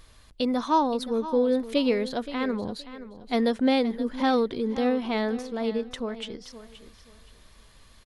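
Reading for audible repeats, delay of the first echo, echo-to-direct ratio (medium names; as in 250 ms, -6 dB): 2, 523 ms, -13.5 dB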